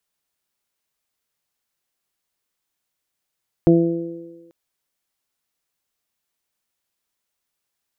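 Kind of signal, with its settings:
harmonic partials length 0.84 s, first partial 168 Hz, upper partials 3.5/−6/−11 dB, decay 1.03 s, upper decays 1.28/1.46/0.70 s, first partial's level −13 dB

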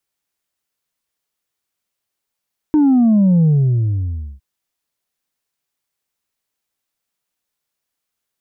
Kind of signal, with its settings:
bass drop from 310 Hz, over 1.66 s, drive 2 dB, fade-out 0.96 s, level −9.5 dB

